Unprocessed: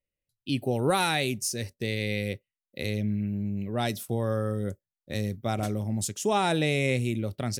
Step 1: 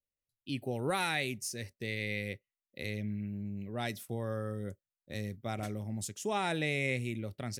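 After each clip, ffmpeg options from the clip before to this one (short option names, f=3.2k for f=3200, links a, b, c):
-af "adynamicequalizer=threshold=0.00562:dfrequency=2000:dqfactor=2:tfrequency=2000:tqfactor=2:attack=5:release=100:ratio=0.375:range=3.5:mode=boostabove:tftype=bell,volume=-8.5dB"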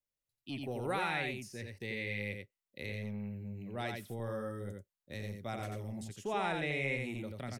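-filter_complex "[0:a]aecho=1:1:87:0.596,acrossover=split=420|3300[a][b][c];[a]asoftclip=type=tanh:threshold=-35dB[d];[c]acompressor=threshold=-53dB:ratio=5[e];[d][b][e]amix=inputs=3:normalize=0,volume=-2dB"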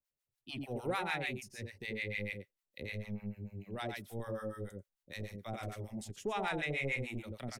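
-filter_complex "[0:a]acrossover=split=750[a][b];[a]aeval=exprs='val(0)*(1-1/2+1/2*cos(2*PI*6.7*n/s))':c=same[c];[b]aeval=exprs='val(0)*(1-1/2-1/2*cos(2*PI*6.7*n/s))':c=same[d];[c][d]amix=inputs=2:normalize=0,asubboost=boost=2.5:cutoff=53,aeval=exprs='0.0531*(cos(1*acos(clip(val(0)/0.0531,-1,1)))-cos(1*PI/2))+0.00422*(cos(5*acos(clip(val(0)/0.0531,-1,1)))-cos(5*PI/2))+0.00188*(cos(7*acos(clip(val(0)/0.0531,-1,1)))-cos(7*PI/2))':c=same,volume=2.5dB"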